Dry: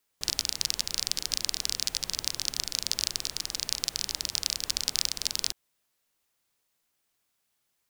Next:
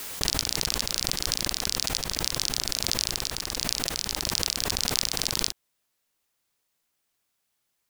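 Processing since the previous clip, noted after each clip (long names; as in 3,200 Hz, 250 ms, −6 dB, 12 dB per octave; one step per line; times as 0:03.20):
background raised ahead of every attack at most 25 dB per second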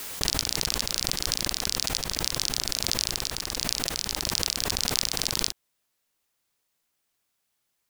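no processing that can be heard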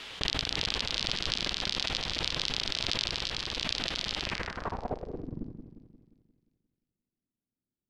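echo with a time of its own for lows and highs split 2,000 Hz, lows 176 ms, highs 357 ms, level −8 dB
low-pass filter sweep 3,300 Hz → 260 Hz, 0:04.19–0:05.35
level −4 dB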